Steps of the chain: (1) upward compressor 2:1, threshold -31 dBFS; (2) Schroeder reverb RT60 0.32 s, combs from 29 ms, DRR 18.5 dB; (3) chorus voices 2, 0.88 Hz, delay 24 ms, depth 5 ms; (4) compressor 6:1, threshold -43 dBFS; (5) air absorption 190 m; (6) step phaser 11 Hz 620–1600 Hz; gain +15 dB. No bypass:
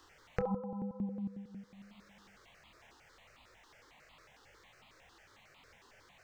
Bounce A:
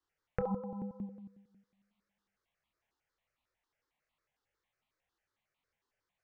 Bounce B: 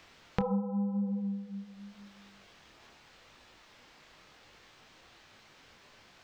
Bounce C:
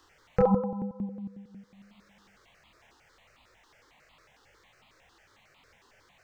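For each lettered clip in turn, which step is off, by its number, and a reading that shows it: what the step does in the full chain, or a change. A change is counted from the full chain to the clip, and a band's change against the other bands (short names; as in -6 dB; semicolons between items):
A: 1, momentary loudness spread change -5 LU; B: 6, 2 kHz band -4.5 dB; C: 4, momentary loudness spread change -3 LU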